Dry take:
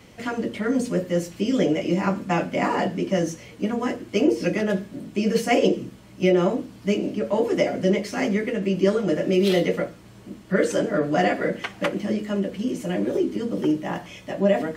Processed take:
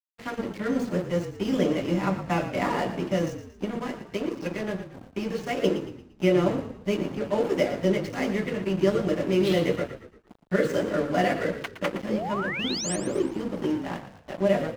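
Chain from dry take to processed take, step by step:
running median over 5 samples
low-shelf EQ 140 Hz +4 dB
mains-hum notches 50/100/150/200/250/300/350 Hz
0:03.64–0:05.64: downward compressor 6 to 1, threshold −22 dBFS, peak gain reduction 8.5 dB
dead-zone distortion −34.5 dBFS
0:12.11–0:12.96: sound drawn into the spectrogram rise 460–9,400 Hz −30 dBFS
echo with shifted repeats 115 ms, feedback 41%, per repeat −37 Hz, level −11 dB
level −2 dB

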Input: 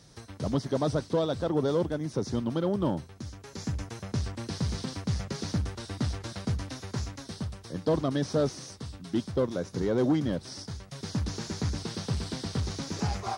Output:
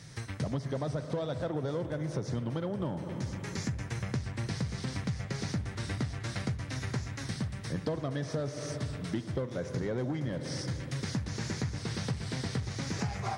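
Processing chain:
octave-band graphic EQ 125/2,000/8,000 Hz +11/+11/+5 dB
convolution reverb RT60 3.2 s, pre-delay 46 ms, DRR 10 dB
dynamic equaliser 630 Hz, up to +5 dB, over −40 dBFS, Q 1.1
downward compressor 6 to 1, threshold −31 dBFS, peak gain reduction 14.5 dB

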